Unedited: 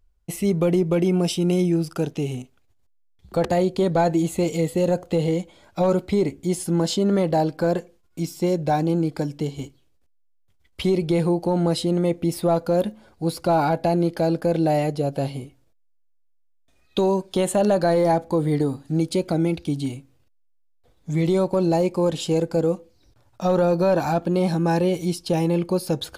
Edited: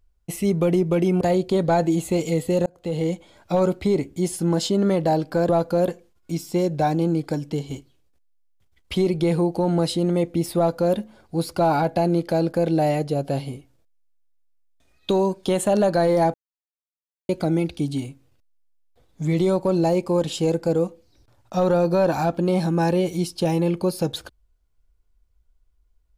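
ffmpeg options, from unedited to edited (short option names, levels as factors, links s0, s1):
-filter_complex "[0:a]asplit=7[s0][s1][s2][s3][s4][s5][s6];[s0]atrim=end=1.212[s7];[s1]atrim=start=3.478:end=4.93,asetpts=PTS-STARTPTS,afade=t=out:st=1.448:d=0.004:c=hsin[s8];[s2]atrim=start=4.93:end=7.762,asetpts=PTS-STARTPTS,afade=t=in:d=0.44[s9];[s3]atrim=start=12.448:end=12.842[s10];[s4]atrim=start=7.758:end=18.22,asetpts=PTS-STARTPTS,afade=t=out:st=10.458:d=0.004:c=hsin[s11];[s5]atrim=start=18.22:end=19.17,asetpts=PTS-STARTPTS,volume=0[s12];[s6]atrim=start=19.17,asetpts=PTS-STARTPTS,afade=t=in:d=0.004:c=hsin[s13];[s8][s9]concat=n=2:v=0:a=1[s14];[s7][s14]acrossfade=d=0.004:c1=hsin:c2=hsin[s15];[s15][s10]acrossfade=d=0.004:c1=hsin:c2=hsin[s16];[s11][s12][s13]concat=n=3:v=0:a=1[s17];[s16][s17]acrossfade=d=0.004:c1=hsin:c2=hsin"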